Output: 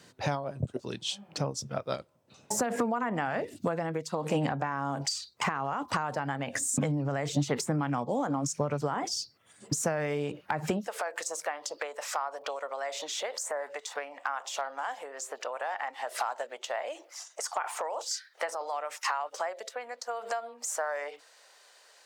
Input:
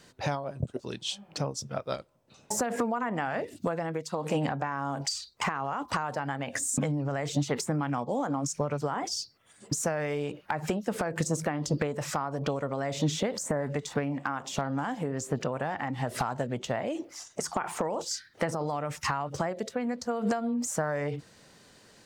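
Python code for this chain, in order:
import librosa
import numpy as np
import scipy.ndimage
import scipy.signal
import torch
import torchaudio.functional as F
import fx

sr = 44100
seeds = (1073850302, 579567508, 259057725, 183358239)

y = fx.highpass(x, sr, hz=fx.steps((0.0, 73.0), (10.87, 570.0)), slope=24)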